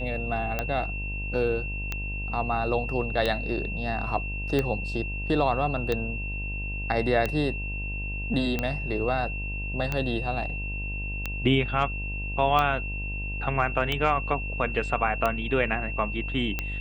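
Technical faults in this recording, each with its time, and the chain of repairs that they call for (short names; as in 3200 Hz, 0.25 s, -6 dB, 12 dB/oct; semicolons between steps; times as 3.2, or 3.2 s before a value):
buzz 50 Hz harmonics 21 -33 dBFS
tick 45 rpm -13 dBFS
tone 2700 Hz -34 dBFS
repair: de-click; notch 2700 Hz, Q 30; de-hum 50 Hz, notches 21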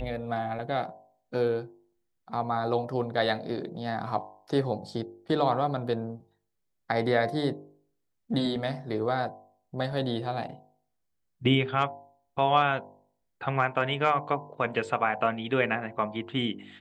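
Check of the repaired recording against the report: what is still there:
none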